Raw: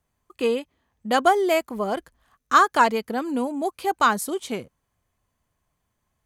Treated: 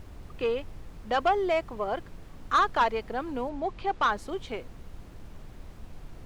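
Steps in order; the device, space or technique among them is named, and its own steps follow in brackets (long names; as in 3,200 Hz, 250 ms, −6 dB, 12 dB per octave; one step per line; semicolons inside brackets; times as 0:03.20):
aircraft cabin announcement (band-pass filter 370–3,300 Hz; soft clipping −13.5 dBFS, distortion −13 dB; brown noise bed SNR 11 dB)
0:03.49–0:04.08: low-pass filter 6,500 Hz 12 dB per octave
level −3 dB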